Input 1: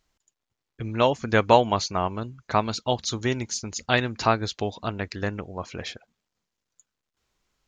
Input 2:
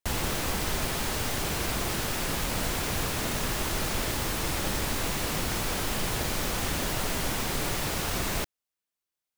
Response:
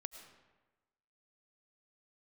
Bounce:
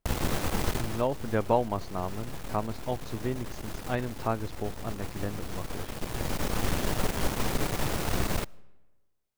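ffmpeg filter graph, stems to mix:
-filter_complex "[0:a]lowpass=f=1.6k:p=1,volume=-9dB,asplit=2[a][b];[1:a]aeval=exprs='clip(val(0),-1,0.0106)':c=same,volume=1dB,asplit=2[c][d];[d]volume=-15dB[e];[b]apad=whole_len=413320[f];[c][f]sidechaincompress=threshold=-44dB:ratio=8:attack=16:release=1210[g];[2:a]atrim=start_sample=2205[h];[e][h]afir=irnorm=-1:irlink=0[i];[a][g][i]amix=inputs=3:normalize=0,tiltshelf=f=1.2k:g=4"

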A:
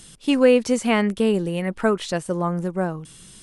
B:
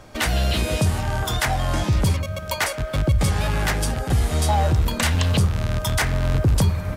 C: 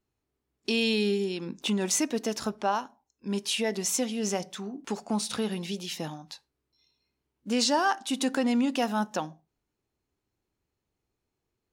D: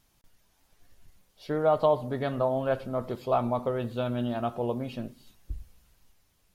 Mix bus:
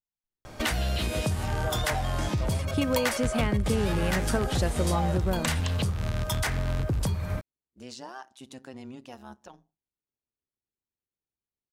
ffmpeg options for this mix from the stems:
-filter_complex "[0:a]adelay=2500,volume=-1.5dB[a];[1:a]adelay=450,volume=1dB[b];[2:a]tremolo=f=130:d=0.824,adelay=300,volume=-14dB[c];[3:a]volume=-12dB[d];[a][d]amix=inputs=2:normalize=0,agate=range=-23dB:threshold=-40dB:ratio=16:detection=peak,acompressor=threshold=-25dB:ratio=6,volume=0dB[e];[b][c]amix=inputs=2:normalize=0,acompressor=threshold=-25dB:ratio=6,volume=0dB[f];[e][f]amix=inputs=2:normalize=0"

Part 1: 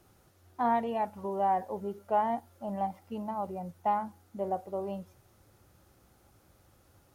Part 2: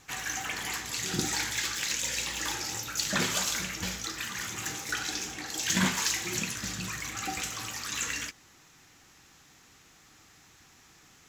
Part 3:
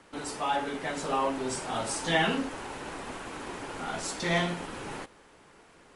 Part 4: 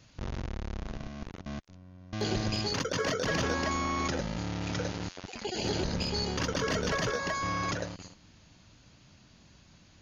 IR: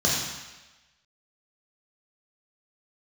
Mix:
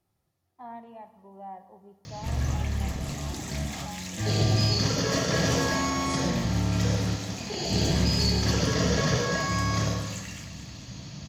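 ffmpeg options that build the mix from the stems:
-filter_complex "[0:a]volume=-14.5dB,asplit=3[a][b][c];[b]volume=-23dB[d];[1:a]adelay=2150,volume=-9.5dB,asplit=2[e][f];[f]volume=-8.5dB[g];[2:a]acompressor=threshold=-34dB:ratio=6,adelay=2050,volume=-4.5dB[h];[3:a]acompressor=mode=upward:threshold=-37dB:ratio=2.5,adelay=2050,volume=-5dB,asplit=2[i][j];[j]volume=-6.5dB[k];[c]apad=whole_len=352875[l];[h][l]sidechaincompress=threshold=-58dB:ratio=8:attack=16:release=217[m];[4:a]atrim=start_sample=2205[n];[d][k]amix=inputs=2:normalize=0[o];[o][n]afir=irnorm=-1:irlink=0[p];[g]aecho=0:1:219|438|657|876|1095|1314|1533|1752:1|0.54|0.292|0.157|0.085|0.0459|0.0248|0.0134[q];[a][e][m][i][p][q]amix=inputs=6:normalize=0,bandreject=f=1.5k:w=7.1"

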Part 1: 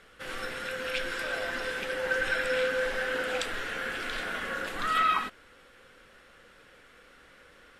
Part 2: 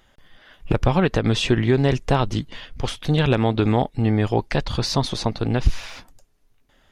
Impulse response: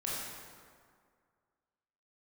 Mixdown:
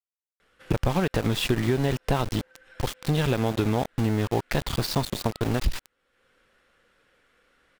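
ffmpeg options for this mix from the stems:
-filter_complex "[0:a]acompressor=threshold=-39dB:ratio=5,adelay=400,volume=-9dB[a];[1:a]equalizer=f=6.2k:w=4.3:g=-8,aeval=exprs='val(0)*gte(abs(val(0)),0.0596)':c=same,volume=-1.5dB,asplit=2[b][c];[c]apad=whole_len=361290[d];[a][d]sidechaincompress=threshold=-34dB:ratio=4:attack=8.4:release=406[e];[e][b]amix=inputs=2:normalize=0,acompressor=threshold=-20dB:ratio=3"

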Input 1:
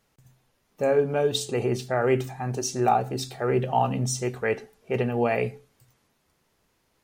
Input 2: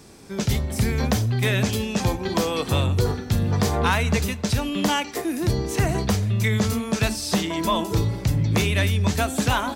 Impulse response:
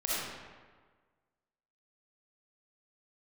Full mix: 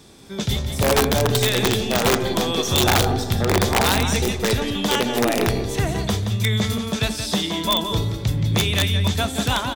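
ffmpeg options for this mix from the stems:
-filter_complex "[0:a]aeval=exprs='if(lt(val(0),0),0.447*val(0),val(0))':c=same,lowshelf=f=130:t=q:w=1.5:g=-14,asoftclip=type=hard:threshold=-13dB,volume=2dB,asplit=3[a][b][c];[b]volume=-13.5dB[d];[c]volume=-8.5dB[e];[1:a]equalizer=f=3.5k:t=o:w=0.21:g=12,volume=-1dB,asplit=2[f][g];[g]volume=-8.5dB[h];[2:a]atrim=start_sample=2205[i];[d][i]afir=irnorm=-1:irlink=0[j];[e][h]amix=inputs=2:normalize=0,aecho=0:1:174:1[k];[a][f][j][k]amix=inputs=4:normalize=0,aeval=exprs='(mod(3.16*val(0)+1,2)-1)/3.16':c=same"

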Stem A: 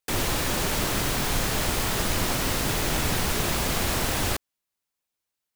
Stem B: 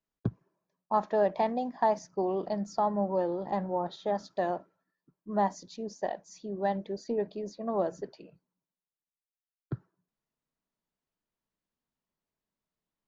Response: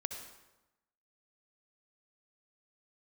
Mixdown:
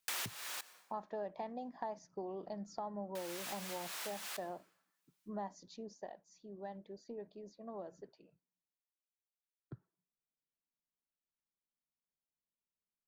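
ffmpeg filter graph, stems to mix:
-filter_complex "[0:a]highpass=1.1k,volume=2dB,asplit=3[a][b][c];[a]atrim=end=0.61,asetpts=PTS-STARTPTS,afade=t=out:st=0.606:d=0.004:c=hsin[d];[b]atrim=start=0.61:end=3.15,asetpts=PTS-STARTPTS,volume=0[e];[c]atrim=start=3.15,asetpts=PTS-STARTPTS,afade=t=in:d=0.004:c=hsin[f];[d][e][f]concat=n=3:v=0:a=1,asplit=2[g][h];[h]volume=-22dB[i];[1:a]volume=-6.5dB,afade=t=out:st=5.68:d=0.46:silence=0.421697,asplit=2[j][k];[k]apad=whole_len=244881[l];[g][l]sidechaincompress=threshold=-54dB:ratio=5:attack=22:release=430[m];[2:a]atrim=start_sample=2205[n];[i][n]afir=irnorm=-1:irlink=0[o];[m][j][o]amix=inputs=3:normalize=0,acompressor=threshold=-43dB:ratio=2.5"

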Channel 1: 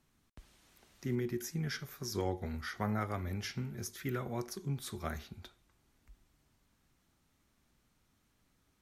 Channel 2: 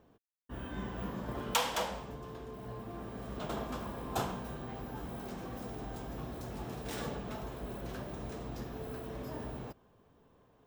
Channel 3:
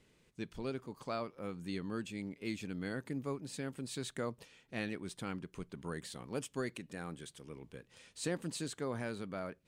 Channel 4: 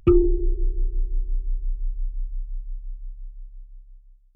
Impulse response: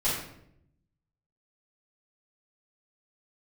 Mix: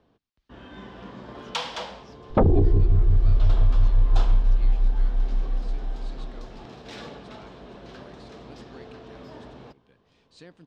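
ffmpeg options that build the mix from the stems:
-filter_complex "[0:a]volume=-18.5dB[a];[1:a]acrossover=split=180[b][c];[b]acompressor=threshold=-51dB:ratio=2.5[d];[d][c]amix=inputs=2:normalize=0,volume=-0.5dB[e];[2:a]adelay=2150,volume=-11.5dB[f];[3:a]tiltshelf=f=660:g=10,bandreject=f=50:t=h:w=6,bandreject=f=100:t=h:w=6,bandreject=f=150:t=h:w=6,bandreject=f=200:t=h:w=6,bandreject=f=250:t=h:w=6,bandreject=f=300:t=h:w=6,bandreject=f=350:t=h:w=6,aeval=exprs='1.06*sin(PI/2*3.55*val(0)/1.06)':c=same,adelay=2300,volume=-13dB[g];[a][e][f][g]amix=inputs=4:normalize=0,lowpass=f=4.4k:t=q:w=1.7"

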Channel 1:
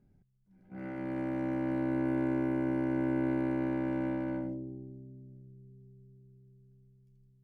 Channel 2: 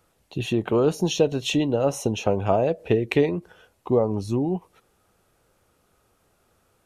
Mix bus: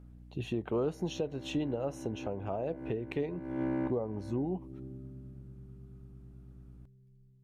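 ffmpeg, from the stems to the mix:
-filter_complex "[0:a]volume=2dB[a];[1:a]aeval=exprs='val(0)+0.00794*(sin(2*PI*60*n/s)+sin(2*PI*2*60*n/s)/2+sin(2*PI*3*60*n/s)/3+sin(2*PI*4*60*n/s)/4+sin(2*PI*5*60*n/s)/5)':c=same,volume=-9dB,asplit=2[b][c];[c]apad=whole_len=327742[d];[a][d]sidechaincompress=threshold=-44dB:ratio=10:attack=8.6:release=290[e];[e][b]amix=inputs=2:normalize=0,highshelf=f=2.9k:g=-8.5,alimiter=limit=-23dB:level=0:latency=1:release=417"

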